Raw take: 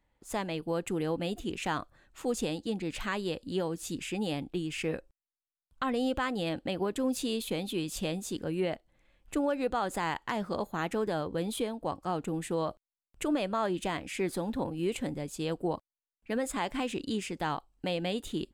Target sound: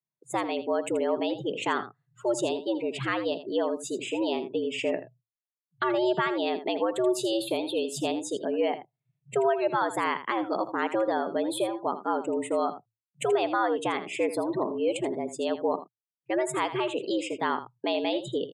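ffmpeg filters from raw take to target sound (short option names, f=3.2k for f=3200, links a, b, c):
-af "afftdn=nr=30:nf=-44,aecho=1:1:81:0.237,afreqshift=110,volume=4.5dB"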